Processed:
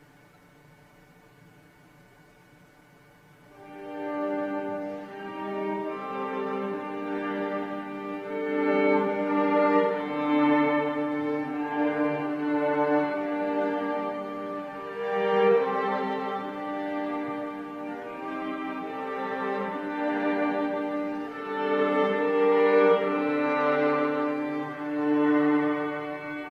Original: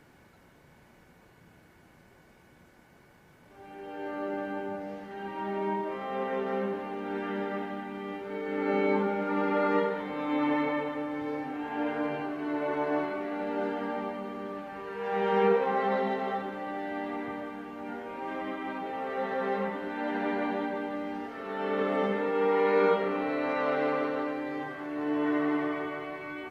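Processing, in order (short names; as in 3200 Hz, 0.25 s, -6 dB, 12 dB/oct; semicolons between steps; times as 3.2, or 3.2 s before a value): comb 6.8 ms, depth 95%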